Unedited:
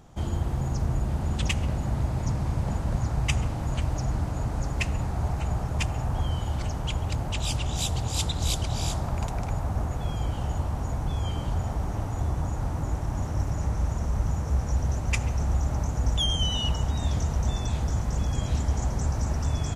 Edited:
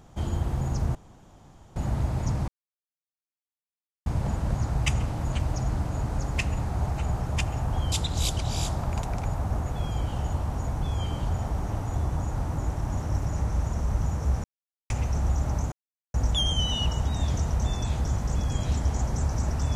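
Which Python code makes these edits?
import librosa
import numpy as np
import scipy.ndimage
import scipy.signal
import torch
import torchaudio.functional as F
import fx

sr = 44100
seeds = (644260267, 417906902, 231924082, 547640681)

y = fx.edit(x, sr, fx.room_tone_fill(start_s=0.95, length_s=0.81),
    fx.insert_silence(at_s=2.48, length_s=1.58),
    fx.cut(start_s=6.34, length_s=1.83),
    fx.silence(start_s=14.69, length_s=0.46),
    fx.insert_silence(at_s=15.97, length_s=0.42), tone=tone)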